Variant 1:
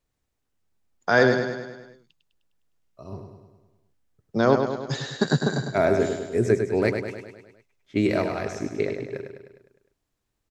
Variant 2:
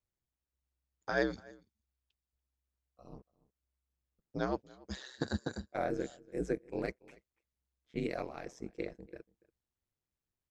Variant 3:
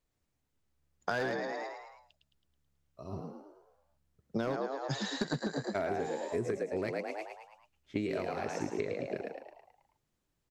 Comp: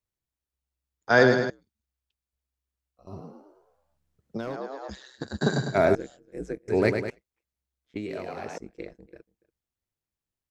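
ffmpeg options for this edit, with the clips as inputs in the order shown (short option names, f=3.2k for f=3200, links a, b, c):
-filter_complex "[0:a]asplit=3[a][b][c];[2:a]asplit=2[d][e];[1:a]asplit=6[f][g][h][i][j][k];[f]atrim=end=1.102[l];[a]atrim=start=1.098:end=1.502[m];[g]atrim=start=1.498:end=3.072[n];[d]atrim=start=3.068:end=4.902[o];[h]atrim=start=4.898:end=5.412[p];[b]atrim=start=5.408:end=5.952[q];[i]atrim=start=5.948:end=6.682[r];[c]atrim=start=6.678:end=7.102[s];[j]atrim=start=7.098:end=7.962[t];[e]atrim=start=7.958:end=8.582[u];[k]atrim=start=8.578[v];[l][m]acrossfade=d=0.004:c1=hsin:c2=hsin[w];[w][n]acrossfade=d=0.004:c1=hsin:c2=hsin[x];[x][o]acrossfade=d=0.004:c1=hsin:c2=hsin[y];[y][p]acrossfade=d=0.004:c1=hsin:c2=hsin[z];[z][q]acrossfade=d=0.004:c1=hsin:c2=hsin[aa];[aa][r]acrossfade=d=0.004:c1=hsin:c2=hsin[ab];[ab][s]acrossfade=d=0.004:c1=hsin:c2=hsin[ac];[ac][t]acrossfade=d=0.004:c1=hsin:c2=hsin[ad];[ad][u]acrossfade=d=0.004:c1=hsin:c2=hsin[ae];[ae][v]acrossfade=d=0.004:c1=hsin:c2=hsin"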